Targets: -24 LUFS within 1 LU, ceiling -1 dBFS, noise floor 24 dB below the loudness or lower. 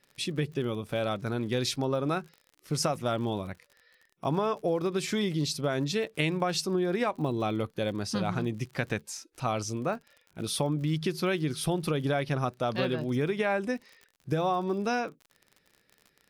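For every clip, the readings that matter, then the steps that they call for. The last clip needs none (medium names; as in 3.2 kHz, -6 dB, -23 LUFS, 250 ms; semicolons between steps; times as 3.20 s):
tick rate 52 per s; loudness -30.5 LUFS; peak level -13.5 dBFS; loudness target -24.0 LUFS
-> de-click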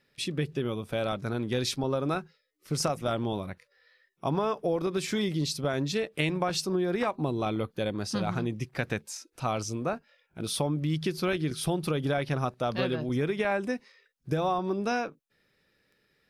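tick rate 0.12 per s; loudness -30.5 LUFS; peak level -13.5 dBFS; loudness target -24.0 LUFS
-> trim +6.5 dB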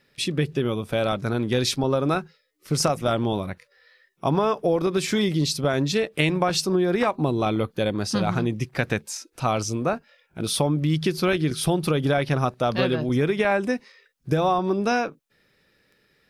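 loudness -24.0 LUFS; peak level -7.0 dBFS; noise floor -66 dBFS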